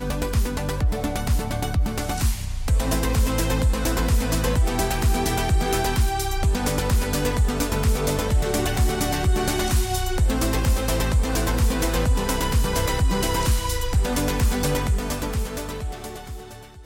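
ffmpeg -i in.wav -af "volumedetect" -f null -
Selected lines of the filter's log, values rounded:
mean_volume: -21.5 dB
max_volume: -11.0 dB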